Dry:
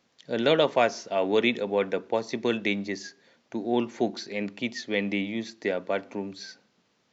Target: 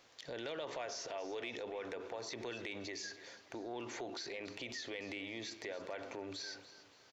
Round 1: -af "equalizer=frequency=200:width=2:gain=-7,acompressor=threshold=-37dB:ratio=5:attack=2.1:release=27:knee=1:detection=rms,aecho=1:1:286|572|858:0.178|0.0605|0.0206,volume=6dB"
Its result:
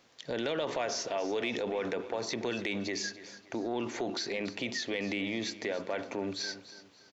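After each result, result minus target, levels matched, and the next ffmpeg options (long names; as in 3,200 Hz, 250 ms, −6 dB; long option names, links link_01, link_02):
downward compressor: peak gain reduction −9 dB; 250 Hz band +2.5 dB
-af "equalizer=frequency=200:width=2:gain=-7,acompressor=threshold=-49dB:ratio=5:attack=2.1:release=27:knee=1:detection=rms,aecho=1:1:286|572|858:0.178|0.0605|0.0206,volume=6dB"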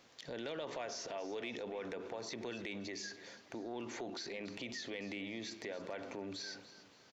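250 Hz band +2.5 dB
-af "equalizer=frequency=200:width=2:gain=-18,acompressor=threshold=-49dB:ratio=5:attack=2.1:release=27:knee=1:detection=rms,aecho=1:1:286|572|858:0.178|0.0605|0.0206,volume=6dB"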